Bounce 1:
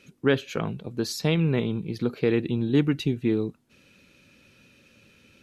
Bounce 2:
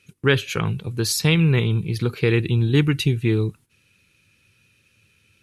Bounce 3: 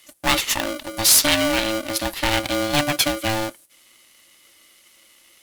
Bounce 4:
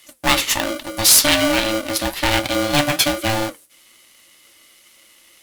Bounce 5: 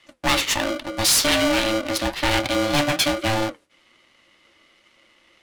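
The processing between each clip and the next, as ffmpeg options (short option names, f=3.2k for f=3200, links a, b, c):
-af "agate=range=-12dB:threshold=-49dB:ratio=16:detection=peak,equalizer=f=100:t=o:w=0.67:g=8,equalizer=f=250:t=o:w=0.67:g=-9,equalizer=f=630:t=o:w=0.67:g=-11,equalizer=f=2.5k:t=o:w=0.67:g=3,equalizer=f=10k:t=o:w=0.67:g=10,volume=7dB"
-af "crystalizer=i=7.5:c=0,asoftclip=type=tanh:threshold=-4.5dB,aeval=exprs='val(0)*sgn(sin(2*PI*440*n/s))':c=same,volume=-4dB"
-af "flanger=delay=7.1:depth=8.7:regen=-63:speed=1.2:shape=triangular,volume=7dB"
-filter_complex "[0:a]acrossover=split=480[a][b];[b]adynamicsmooth=sensitivity=4:basefreq=2.9k[c];[a][c]amix=inputs=2:normalize=0,asoftclip=type=tanh:threshold=-12.5dB"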